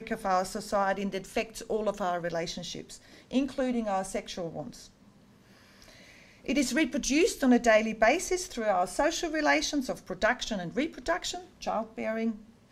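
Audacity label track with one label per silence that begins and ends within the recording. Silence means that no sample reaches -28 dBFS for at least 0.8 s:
4.610000	6.490000	silence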